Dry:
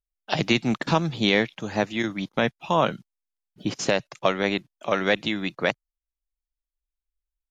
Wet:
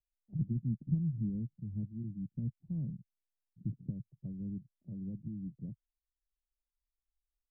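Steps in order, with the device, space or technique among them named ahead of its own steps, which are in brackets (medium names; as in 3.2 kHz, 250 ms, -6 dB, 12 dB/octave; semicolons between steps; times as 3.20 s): the neighbour's flat through the wall (low-pass 180 Hz 24 dB/octave; peaking EQ 100 Hz +4 dB 0.93 oct); trim -4.5 dB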